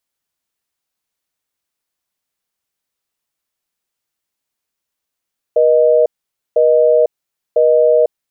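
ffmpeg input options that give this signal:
-f lavfi -i "aevalsrc='0.299*(sin(2*PI*480*t)+sin(2*PI*620*t))*clip(min(mod(t,1),0.5-mod(t,1))/0.005,0,1)':d=2.56:s=44100"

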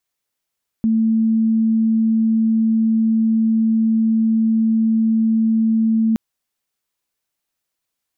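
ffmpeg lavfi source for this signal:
-f lavfi -i "sine=f=223:d=5.32:r=44100,volume=5.06dB"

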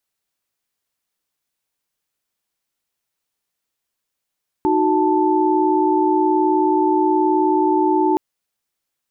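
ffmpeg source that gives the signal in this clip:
-f lavfi -i "aevalsrc='0.126*(sin(2*PI*311.13*t)+sin(2*PI*369.99*t)+sin(2*PI*880*t))':d=3.52:s=44100"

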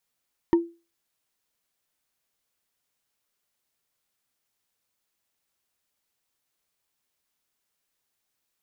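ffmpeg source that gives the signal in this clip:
-f lavfi -i "aevalsrc='0.251*pow(10,-3*t/0.3)*sin(2*PI*338*t)+0.0794*pow(10,-3*t/0.089)*sin(2*PI*931.9*t)+0.0251*pow(10,-3*t/0.04)*sin(2*PI*1826.6*t)+0.00794*pow(10,-3*t/0.022)*sin(2*PI*3019.4*t)+0.00251*pow(10,-3*t/0.013)*sin(2*PI*4508.9*t)':d=0.45:s=44100"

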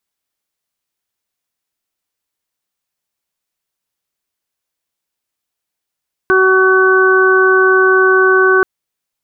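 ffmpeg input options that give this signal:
-f lavfi -i "aevalsrc='0.316*sin(2*PI*377*t)+0.0596*sin(2*PI*754*t)+0.188*sin(2*PI*1131*t)+0.282*sin(2*PI*1508*t)':d=2.33:s=44100"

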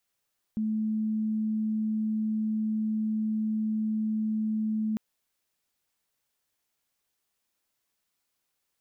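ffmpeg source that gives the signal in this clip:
-f lavfi -i "sine=f=217:d=4.4:r=44100,volume=-7.44dB"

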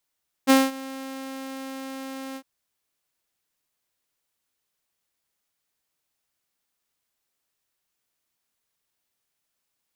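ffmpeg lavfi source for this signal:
-f lavfi -i "aevalsrc='0.335*(2*mod(267*t,1)-1)':d=1.956:s=44100,afade=t=in:d=0.033,afade=t=out:st=0.033:d=0.206:silence=0.0841,afade=t=out:st=1.89:d=0.066"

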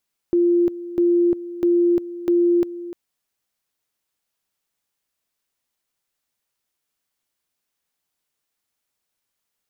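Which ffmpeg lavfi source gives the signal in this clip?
-f lavfi -i "aevalsrc='pow(10,(-13.5-15.5*gte(mod(t,0.65),0.35))/20)*sin(2*PI*347*t)':d=2.6:s=44100"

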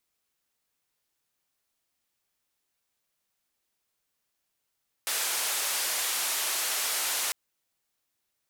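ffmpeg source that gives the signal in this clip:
-f lavfi -i "anoisesrc=c=white:d=2.25:r=44100:seed=1,highpass=f=580,lowpass=f=13000,volume=-22.2dB"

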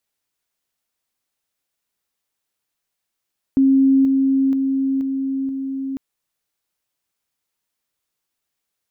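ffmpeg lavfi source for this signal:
-f lavfi -i "aevalsrc='pow(10,(-10.5-3*floor(t/0.48))/20)*sin(2*PI*269*t)':d=2.4:s=44100"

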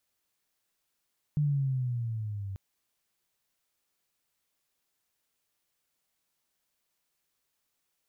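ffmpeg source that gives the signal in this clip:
-f lavfi -i "aevalsrc='pow(10,(-23-11.5*t/1.19)/20)*sin(2*PI*151*1.19/(-8*log(2)/12)*(exp(-8*log(2)/12*t/1.19)-1))':d=1.19:s=44100"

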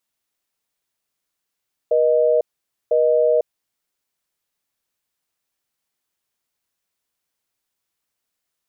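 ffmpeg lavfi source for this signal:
-f lavfi -i "aevalsrc='0.158*(sin(2*PI*480*t)+sin(2*PI*620*t))*clip(min(mod(t,1),0.5-mod(t,1))/0.005,0,1)':d=1.84:s=44100"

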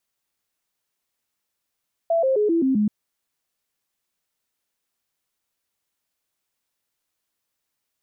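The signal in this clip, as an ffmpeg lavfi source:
-f lavfi -i "aevalsrc='0.15*clip(min(mod(t,0.13),0.13-mod(t,0.13))/0.005,0,1)*sin(2*PI*667*pow(2,-floor(t/0.13)/3)*mod(t,0.13))':d=0.78:s=44100"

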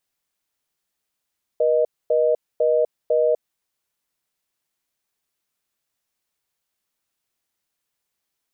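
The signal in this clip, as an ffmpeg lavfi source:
-f lavfi -i "aevalsrc='0.126*(sin(2*PI*480*t)+sin(2*PI*620*t))*clip(min(mod(t,0.5),0.25-mod(t,0.5))/0.005,0,1)':d=1.75:s=44100"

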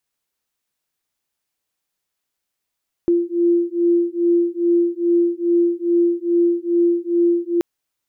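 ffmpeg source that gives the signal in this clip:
-f lavfi -i "aevalsrc='0.133*(sin(2*PI*343*t)+sin(2*PI*345.4*t))':d=4.53:s=44100"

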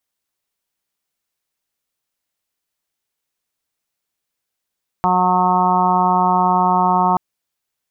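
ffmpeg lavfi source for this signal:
-f lavfi -i "aevalsrc='0.0891*sin(2*PI*182*t)+0.0473*sin(2*PI*364*t)+0.0178*sin(2*PI*546*t)+0.126*sin(2*PI*728*t)+0.158*sin(2*PI*910*t)+0.106*sin(2*PI*1092*t)+0.0562*sin(2*PI*1274*t)':d=2.13:s=44100"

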